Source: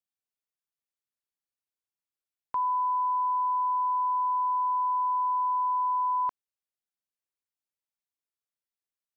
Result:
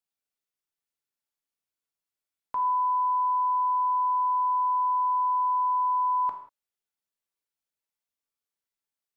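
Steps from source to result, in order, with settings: reverberation, pre-delay 4 ms, DRR 2.5 dB

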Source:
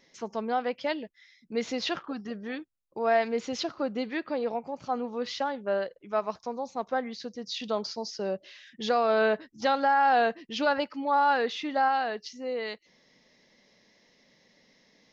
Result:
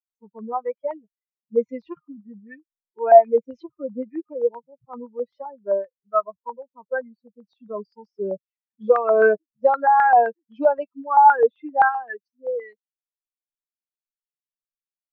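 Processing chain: expander on every frequency bin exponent 3; peaking EQ 470 Hz +11 dB 0.66 oct; harmonic-percussive split percussive -11 dB; step-sequenced low-pass 7.7 Hz 760–1700 Hz; trim +4 dB

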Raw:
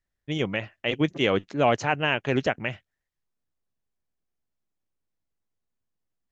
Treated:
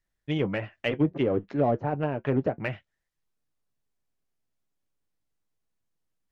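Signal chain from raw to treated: low-pass that closes with the level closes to 600 Hz, closed at -20 dBFS; in parallel at -9 dB: saturation -27.5 dBFS, distortion -7 dB; on the sum: flange 0.34 Hz, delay 6 ms, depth 1.6 ms, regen -60%; trim +3 dB

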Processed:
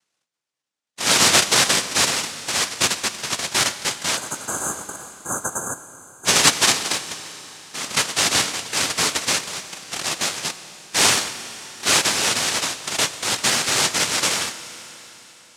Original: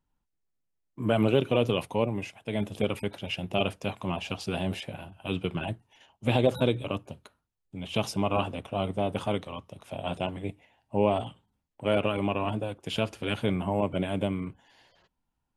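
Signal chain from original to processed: noise-vocoded speech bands 1; spectral selection erased 4.17–6.25 s, 1.7–6.1 kHz; Schroeder reverb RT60 3.9 s, combs from 27 ms, DRR 12 dB; trim +7.5 dB

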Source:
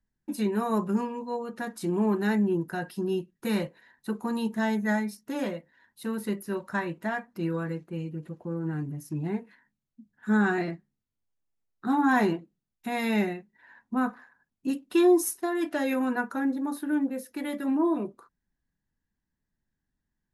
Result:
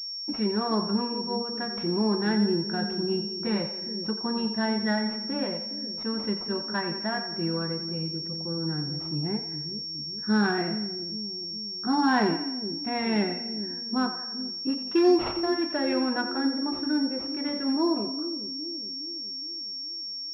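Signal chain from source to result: two-band feedback delay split 450 Hz, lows 415 ms, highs 87 ms, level -9.5 dB; class-D stage that switches slowly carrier 5.5 kHz

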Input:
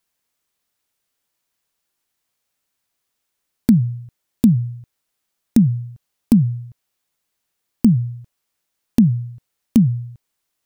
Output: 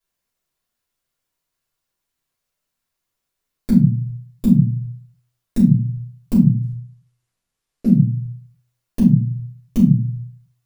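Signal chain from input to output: 6.62–7.89 s: CVSD coder 64 kbps; simulated room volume 190 m³, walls furnished, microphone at 5.7 m; trim -13 dB

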